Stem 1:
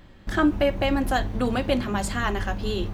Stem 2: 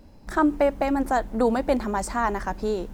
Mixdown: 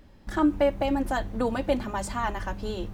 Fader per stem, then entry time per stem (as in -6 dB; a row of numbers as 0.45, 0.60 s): -9.0, -5.5 dB; 0.00, 0.00 s